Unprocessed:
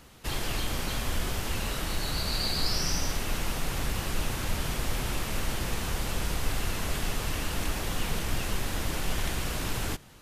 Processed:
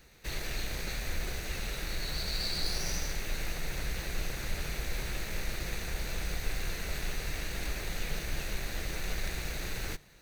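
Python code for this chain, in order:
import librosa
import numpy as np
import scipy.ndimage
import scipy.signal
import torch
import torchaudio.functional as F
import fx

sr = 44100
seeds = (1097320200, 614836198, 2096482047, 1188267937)

y = fx.lower_of_two(x, sr, delay_ms=0.48)
y = fx.graphic_eq_15(y, sr, hz=(100, 250, 10000), db=(-9, -9, -7))
y = y * librosa.db_to_amplitude(-2.0)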